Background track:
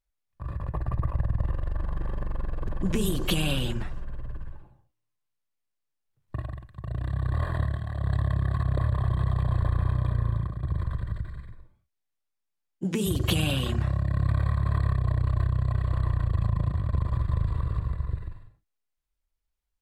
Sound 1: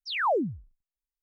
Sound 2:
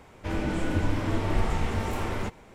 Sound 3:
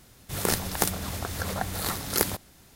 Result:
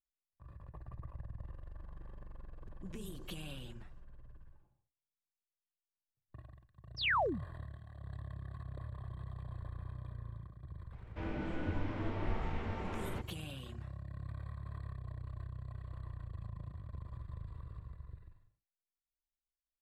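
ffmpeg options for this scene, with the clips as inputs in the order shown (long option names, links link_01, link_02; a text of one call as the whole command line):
ffmpeg -i bed.wav -i cue0.wav -i cue1.wav -filter_complex "[0:a]volume=-19.5dB[link_01];[1:a]equalizer=frequency=2400:width_type=o:width=2:gain=9.5[link_02];[2:a]lowpass=3200[link_03];[link_02]atrim=end=1.22,asetpts=PTS-STARTPTS,volume=-10dB,afade=type=in:duration=0.004:curve=hsin,afade=type=out:start_time=1.216:duration=0.004:curve=hsin,adelay=6910[link_04];[link_03]atrim=end=2.54,asetpts=PTS-STARTPTS,volume=-10.5dB,afade=type=in:duration=0.004:curve=hsin,afade=type=out:start_time=2.536:duration=0.004:curve=hsin,adelay=10920[link_05];[link_01][link_04][link_05]amix=inputs=3:normalize=0" out.wav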